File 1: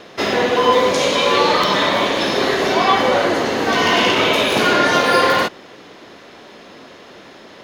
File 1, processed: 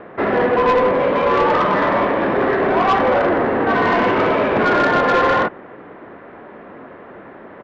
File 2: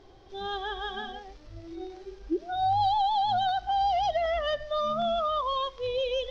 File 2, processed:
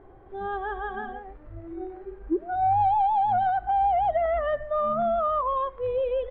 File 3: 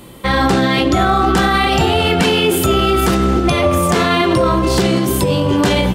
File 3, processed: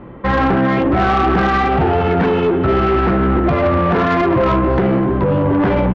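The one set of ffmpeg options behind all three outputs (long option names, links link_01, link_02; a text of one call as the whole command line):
ffmpeg -i in.wav -af "lowpass=frequency=1800:width=0.5412,lowpass=frequency=1800:width=1.3066,aresample=16000,asoftclip=type=tanh:threshold=-13.5dB,aresample=44100,volume=3.5dB" out.wav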